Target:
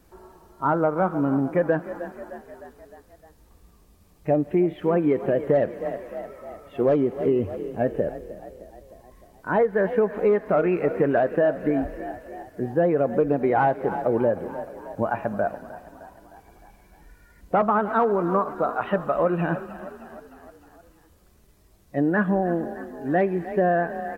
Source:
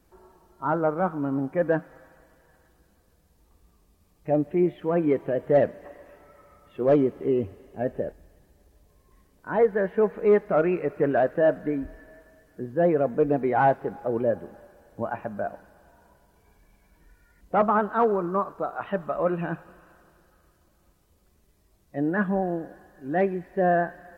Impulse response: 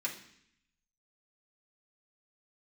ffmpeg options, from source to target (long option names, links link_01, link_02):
-filter_complex "[0:a]asplit=6[link_01][link_02][link_03][link_04][link_05][link_06];[link_02]adelay=307,afreqshift=30,volume=-17dB[link_07];[link_03]adelay=614,afreqshift=60,volume=-21.7dB[link_08];[link_04]adelay=921,afreqshift=90,volume=-26.5dB[link_09];[link_05]adelay=1228,afreqshift=120,volume=-31.2dB[link_10];[link_06]adelay=1535,afreqshift=150,volume=-35.9dB[link_11];[link_01][link_07][link_08][link_09][link_10][link_11]amix=inputs=6:normalize=0,acompressor=threshold=-23dB:ratio=6,volume=6dB"